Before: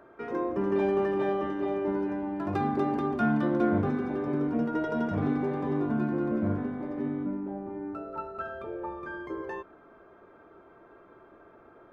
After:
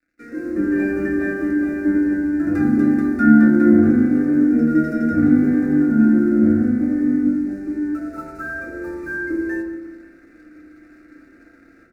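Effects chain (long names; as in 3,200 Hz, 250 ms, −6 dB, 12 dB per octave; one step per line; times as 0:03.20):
automatic gain control gain up to 9.5 dB
dynamic equaliser 3,300 Hz, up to −6 dB, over −43 dBFS, Q 0.73
dead-zone distortion −48 dBFS
flat-topped bell 830 Hz −15.5 dB 1.3 octaves
phaser with its sweep stopped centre 640 Hz, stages 8
repeating echo 178 ms, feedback 57%, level −16.5 dB
feedback delay network reverb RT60 0.86 s, low-frequency decay 1.5×, high-frequency decay 0.4×, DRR −0.5 dB
level +2 dB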